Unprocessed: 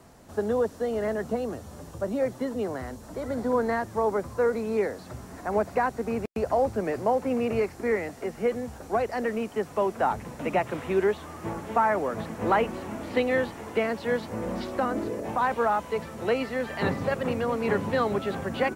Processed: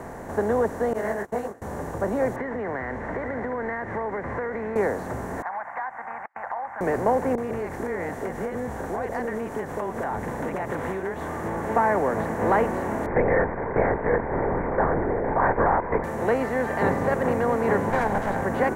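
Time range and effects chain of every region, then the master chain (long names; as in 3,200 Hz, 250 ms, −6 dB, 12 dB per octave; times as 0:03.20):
0:00.93–0:01.62: noise gate −30 dBFS, range −31 dB + spectral tilt +2 dB per octave + micro pitch shift up and down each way 59 cents
0:02.36–0:04.76: low-pass with resonance 2,000 Hz, resonance Q 7.3 + downward compressor, threshold −35 dBFS
0:05.42–0:06.81: elliptic band-pass filter 800–2,100 Hz + downward compressor 3 to 1, threshold −37 dBFS
0:07.35–0:11.64: parametric band 3,400 Hz +6 dB 0.22 octaves + downward compressor, threshold −32 dBFS + multiband delay without the direct sound lows, highs 30 ms, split 630 Hz
0:13.06–0:16.04: Butterworth low-pass 2,300 Hz 96 dB per octave + linear-prediction vocoder at 8 kHz whisper
0:17.90–0:18.42: lower of the sound and its delayed copy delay 1.3 ms + highs frequency-modulated by the lows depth 0.12 ms
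whole clip: compressor on every frequency bin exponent 0.6; flat-topped bell 3,500 Hz −12 dB 1.3 octaves; notch filter 1,300 Hz, Q 9.1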